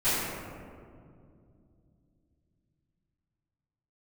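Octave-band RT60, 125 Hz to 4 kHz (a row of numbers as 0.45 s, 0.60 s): 4.6 s, 3.9 s, 2.7 s, 2.0 s, 1.5 s, 0.95 s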